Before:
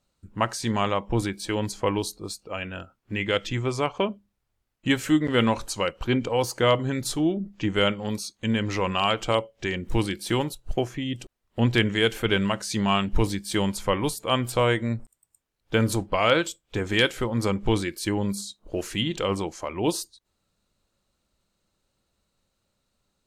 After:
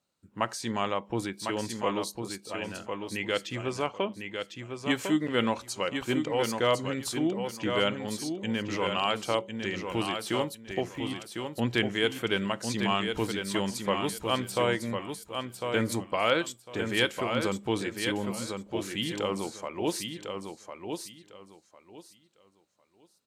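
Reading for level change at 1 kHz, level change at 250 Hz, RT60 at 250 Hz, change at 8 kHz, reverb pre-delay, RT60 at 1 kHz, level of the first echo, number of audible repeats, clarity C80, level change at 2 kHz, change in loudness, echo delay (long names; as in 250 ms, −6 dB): −3.5 dB, −5.0 dB, no reverb audible, −3.5 dB, no reverb audible, no reverb audible, −6.0 dB, 3, no reverb audible, −3.5 dB, −5.0 dB, 1,052 ms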